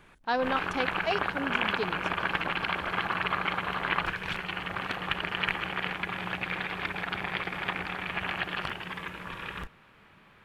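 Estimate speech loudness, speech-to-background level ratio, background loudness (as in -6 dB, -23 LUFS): -33.0 LUFS, -1.5 dB, -31.5 LUFS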